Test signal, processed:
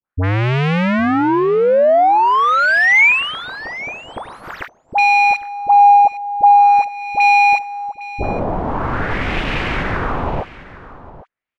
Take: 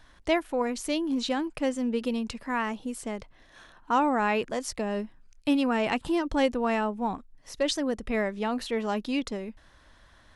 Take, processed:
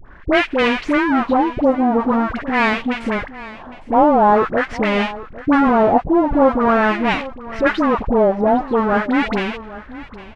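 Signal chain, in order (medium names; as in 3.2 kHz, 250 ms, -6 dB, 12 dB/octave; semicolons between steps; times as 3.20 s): square wave that keeps the level; in parallel at -1 dB: compression, threshold -32 dBFS; on the sum: waveshaping leveller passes 1; LFO low-pass sine 0.45 Hz 720–2600 Hz; phase dispersion highs, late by 63 ms, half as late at 890 Hz; on a send: delay 807 ms -17 dB; on the sum: trim +1.5 dB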